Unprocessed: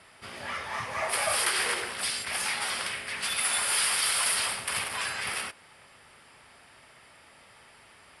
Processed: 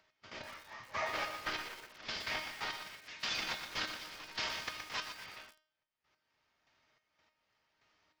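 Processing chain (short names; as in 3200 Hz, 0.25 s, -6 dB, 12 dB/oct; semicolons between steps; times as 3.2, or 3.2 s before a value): CVSD 32 kbps; 3.03–5.03 high shelf 4800 Hz +10 dB; compressor 5:1, threshold -41 dBFS, peak gain reduction 14 dB; gate -43 dBFS, range -51 dB; step gate "x..x.....xx" 144 bpm -12 dB; upward compressor, threshold -58 dBFS; resonator 310 Hz, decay 0.49 s, harmonics all, mix 80%; lo-fi delay 0.12 s, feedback 55%, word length 11-bit, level -7 dB; gain +17.5 dB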